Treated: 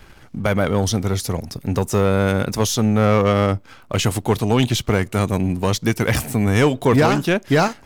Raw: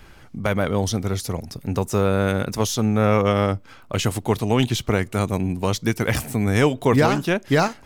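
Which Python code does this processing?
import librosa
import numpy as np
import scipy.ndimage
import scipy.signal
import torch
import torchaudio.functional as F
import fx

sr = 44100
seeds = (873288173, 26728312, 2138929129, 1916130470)

y = fx.leveller(x, sr, passes=1)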